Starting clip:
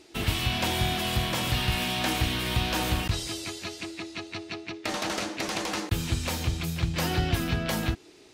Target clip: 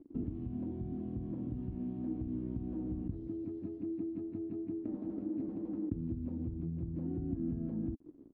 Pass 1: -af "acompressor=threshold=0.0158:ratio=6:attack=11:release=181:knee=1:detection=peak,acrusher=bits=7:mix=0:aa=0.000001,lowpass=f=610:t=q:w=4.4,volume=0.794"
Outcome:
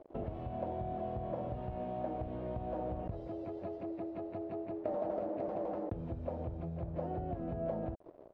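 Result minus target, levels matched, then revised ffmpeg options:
500 Hz band +9.0 dB
-af "acompressor=threshold=0.0158:ratio=6:attack=11:release=181:knee=1:detection=peak,acrusher=bits=7:mix=0:aa=0.000001,lowpass=f=280:t=q:w=4.4,volume=0.794"

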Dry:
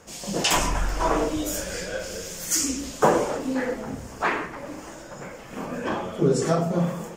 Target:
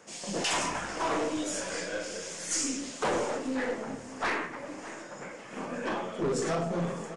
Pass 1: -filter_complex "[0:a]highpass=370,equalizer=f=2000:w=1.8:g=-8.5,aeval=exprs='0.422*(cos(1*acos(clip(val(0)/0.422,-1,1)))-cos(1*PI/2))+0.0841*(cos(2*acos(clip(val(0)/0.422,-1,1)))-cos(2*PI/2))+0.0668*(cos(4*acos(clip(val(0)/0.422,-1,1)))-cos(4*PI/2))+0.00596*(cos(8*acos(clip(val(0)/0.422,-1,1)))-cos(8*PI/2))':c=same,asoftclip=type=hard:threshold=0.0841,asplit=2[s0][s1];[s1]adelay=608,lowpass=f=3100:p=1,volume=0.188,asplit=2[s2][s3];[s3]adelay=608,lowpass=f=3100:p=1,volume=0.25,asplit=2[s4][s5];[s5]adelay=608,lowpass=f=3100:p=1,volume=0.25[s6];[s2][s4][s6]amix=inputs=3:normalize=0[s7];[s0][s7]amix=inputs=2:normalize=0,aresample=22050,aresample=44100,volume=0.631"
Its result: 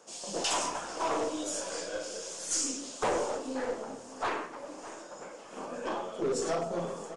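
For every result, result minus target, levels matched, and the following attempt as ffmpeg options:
2 kHz band -4.5 dB; 250 Hz band -3.5 dB
-filter_complex "[0:a]highpass=370,equalizer=f=2000:w=1.8:g=3,aeval=exprs='0.422*(cos(1*acos(clip(val(0)/0.422,-1,1)))-cos(1*PI/2))+0.0841*(cos(2*acos(clip(val(0)/0.422,-1,1)))-cos(2*PI/2))+0.0668*(cos(4*acos(clip(val(0)/0.422,-1,1)))-cos(4*PI/2))+0.00596*(cos(8*acos(clip(val(0)/0.422,-1,1)))-cos(8*PI/2))':c=same,asoftclip=type=hard:threshold=0.0841,asplit=2[s0][s1];[s1]adelay=608,lowpass=f=3100:p=1,volume=0.188,asplit=2[s2][s3];[s3]adelay=608,lowpass=f=3100:p=1,volume=0.25,asplit=2[s4][s5];[s5]adelay=608,lowpass=f=3100:p=1,volume=0.25[s6];[s2][s4][s6]amix=inputs=3:normalize=0[s7];[s0][s7]amix=inputs=2:normalize=0,aresample=22050,aresample=44100,volume=0.631"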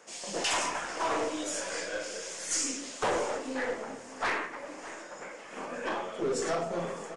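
250 Hz band -4.0 dB
-filter_complex "[0:a]highpass=180,equalizer=f=2000:w=1.8:g=3,aeval=exprs='0.422*(cos(1*acos(clip(val(0)/0.422,-1,1)))-cos(1*PI/2))+0.0841*(cos(2*acos(clip(val(0)/0.422,-1,1)))-cos(2*PI/2))+0.0668*(cos(4*acos(clip(val(0)/0.422,-1,1)))-cos(4*PI/2))+0.00596*(cos(8*acos(clip(val(0)/0.422,-1,1)))-cos(8*PI/2))':c=same,asoftclip=type=hard:threshold=0.0841,asplit=2[s0][s1];[s1]adelay=608,lowpass=f=3100:p=1,volume=0.188,asplit=2[s2][s3];[s3]adelay=608,lowpass=f=3100:p=1,volume=0.25,asplit=2[s4][s5];[s5]adelay=608,lowpass=f=3100:p=1,volume=0.25[s6];[s2][s4][s6]amix=inputs=3:normalize=0[s7];[s0][s7]amix=inputs=2:normalize=0,aresample=22050,aresample=44100,volume=0.631"

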